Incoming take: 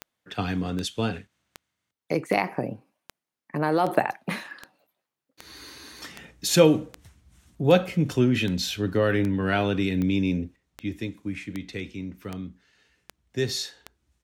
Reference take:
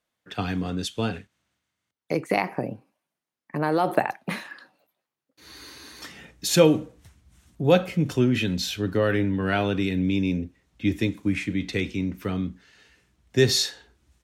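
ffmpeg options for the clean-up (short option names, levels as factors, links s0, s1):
-af "adeclick=t=4,asetnsamples=n=441:p=0,asendcmd='10.56 volume volume 7.5dB',volume=1"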